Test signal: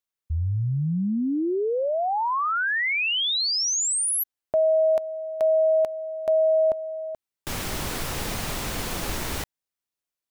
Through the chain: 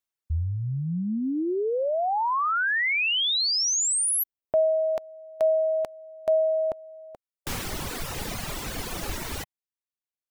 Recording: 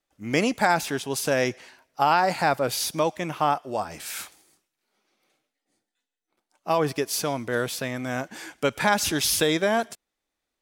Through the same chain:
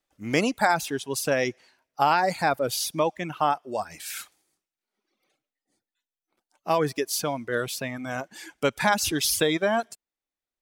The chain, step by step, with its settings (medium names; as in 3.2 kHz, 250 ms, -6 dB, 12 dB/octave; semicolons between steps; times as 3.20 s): reverb removal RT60 1.5 s